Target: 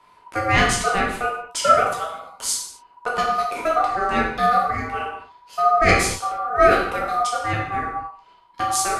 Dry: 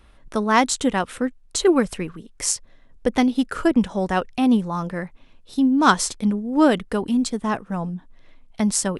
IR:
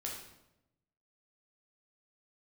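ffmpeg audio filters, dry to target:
-filter_complex "[0:a]asettb=1/sr,asplit=3[link_01][link_02][link_03];[link_01]atrim=end=1.714[link_04];[link_02]atrim=start=1.71:end=3.76,asetpts=PTS-STARTPTS,afade=type=in:duration=0.004:curve=qsin,afade=type=out:start_time=2.046:duration=0.004:curve=qsin,acrossover=split=360|3000[link_05][link_06][link_07];[link_06]acompressor=threshold=-34dB:ratio=1.5[link_08];[link_05][link_08][link_07]amix=inputs=3:normalize=0[link_09];[link_03]atrim=start=3.756[link_10];[link_04][link_09]acrossfade=duration=0.004:curve1=hsin:curve2=qsin[link_11];[link_11][link_10]acrossfade=duration=0.004:curve1=qsin:curve2=hsin,aeval=exprs='val(0)*sin(2*PI*970*n/s)':channel_layout=same[link_12];[1:a]atrim=start_sample=2205,afade=type=out:start_time=0.31:duration=0.01,atrim=end_sample=14112[link_13];[link_12][link_13]afir=irnorm=-1:irlink=0,volume=3.5dB"

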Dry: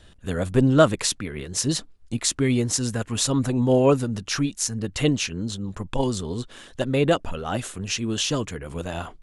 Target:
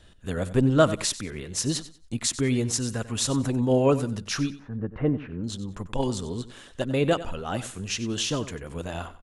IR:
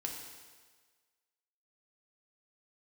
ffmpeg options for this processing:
-filter_complex "[0:a]asettb=1/sr,asplit=3[link_01][link_02][link_03];[link_01]atrim=end=4.504[link_04];[link_02]atrim=start=4.5:end=5.44,asetpts=PTS-STARTPTS,afade=type=in:duration=0.004:curve=qsin,afade=type=out:start_time=0.936:duration=0.004:curve=qsin,lowpass=frequency=1600:width=0.5412,lowpass=frequency=1600:width=1.3066[link_05];[link_03]atrim=start=5.436[link_06];[link_04][link_05]acrossfade=duration=0.004:curve1=hsin:curve2=qsin[link_07];[link_07][link_06]acrossfade=duration=0.004:curve1=qsin:curve2=hsin,asplit=2[link_08][link_09];[link_09]aecho=0:1:93|186|279:0.178|0.0445|0.0111[link_10];[link_08][link_10]amix=inputs=2:normalize=0,volume=-3dB"

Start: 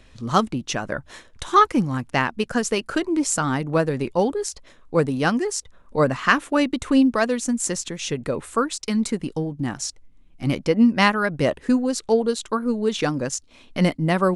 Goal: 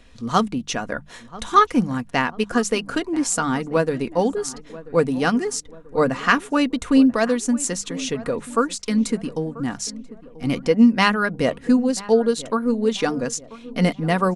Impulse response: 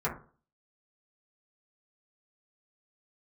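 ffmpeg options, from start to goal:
-filter_complex "[0:a]bandreject=frequency=50:width_type=h:width=6,bandreject=frequency=100:width_type=h:width=6,bandreject=frequency=150:width_type=h:width=6,bandreject=frequency=200:width_type=h:width=6,aecho=1:1:4.2:0.36,asplit=2[link_01][link_02];[link_02]adelay=987,lowpass=frequency=1400:poles=1,volume=-17.5dB,asplit=2[link_03][link_04];[link_04]adelay=987,lowpass=frequency=1400:poles=1,volume=0.5,asplit=2[link_05][link_06];[link_06]adelay=987,lowpass=frequency=1400:poles=1,volume=0.5,asplit=2[link_07][link_08];[link_08]adelay=987,lowpass=frequency=1400:poles=1,volume=0.5[link_09];[link_03][link_05][link_07][link_09]amix=inputs=4:normalize=0[link_10];[link_01][link_10]amix=inputs=2:normalize=0"

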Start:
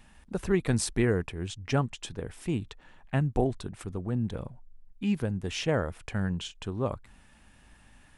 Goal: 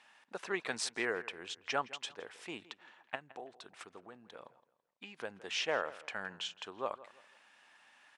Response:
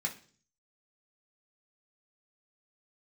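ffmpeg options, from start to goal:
-filter_complex "[0:a]asettb=1/sr,asplit=3[link_01][link_02][link_03];[link_01]atrim=end=3.154[link_04];[link_02]atrim=start=3.15:end=5.2,asetpts=PTS-STARTPTS,afade=type=in:duration=0.004:curve=qsin,afade=type=out:start_time=2.046:duration=0.004:curve=qsin,acompressor=threshold=-34dB:ratio=6[link_05];[link_03]atrim=start=5.196[link_06];[link_04][link_05]acrossfade=duration=0.004:curve1=hsin:curve2=qsin[link_07];[link_07][link_06]acrossfade=duration=0.004:curve1=qsin:curve2=hsin,highpass=730,lowpass=5600,asplit=2[link_08][link_09];[link_09]adelay=166,lowpass=frequency=3900:poles=1,volume=-18dB,asplit=2[link_10][link_11];[link_11]adelay=166,lowpass=frequency=3900:poles=1,volume=0.34,asplit=2[link_12][link_13];[link_13]adelay=166,lowpass=frequency=3900:poles=1,volume=0.34[link_14];[link_08][link_10][link_12][link_14]amix=inputs=4:normalize=0"

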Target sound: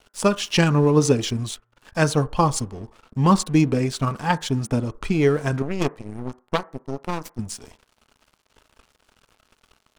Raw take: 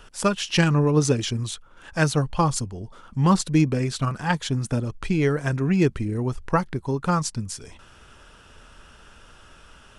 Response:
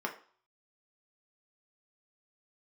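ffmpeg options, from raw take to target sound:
-filter_complex "[0:a]asettb=1/sr,asplit=3[link_01][link_02][link_03];[link_01]atrim=end=5.624[link_04];[link_02]atrim=start=5.62:end=7.39,asetpts=PTS-STARTPTS,afade=type=in:duration=0.004:curve=qsin,afade=type=out:start_time=1.766:duration=0.004:curve=qsin,aeval=exprs='0.398*(cos(1*acos(clip(val(0)/0.398,-1,1)))-cos(1*PI/2))+0.126*(cos(3*acos(clip(val(0)/0.398,-1,1)))-cos(3*PI/2))+0.02*(cos(4*acos(clip(val(0)/0.398,-1,1)))-cos(4*PI/2))+0.00891*(cos(5*acos(clip(val(0)/0.398,-1,1)))-cos(5*PI/2))+0.0158*(cos(8*acos(clip(val(0)/0.398,-1,1)))-cos(8*PI/2))':channel_layout=same[link_05];[link_03]atrim=start=7.386[link_06];[link_04][link_05]acrossfade=duration=0.004:curve1=hsin:curve2=qsin[link_07];[link_07][link_06]acrossfade=duration=0.004:curve1=qsin:curve2=hsin,aeval=exprs='sgn(val(0))*max(abs(val(0))-0.00596,0)':channel_layout=same,asplit=2[link_08][link_09];[1:a]atrim=start_sample=2205,lowpass=frequency=1900:width=0.5412,lowpass=frequency=1900:width=1.3066[link_10];[link_09][link_10]afir=irnorm=-1:irlink=0,volume=-14.5dB[link_11];[link_08][link_11]amix=inputs=2:normalize=0,volume=2dB"

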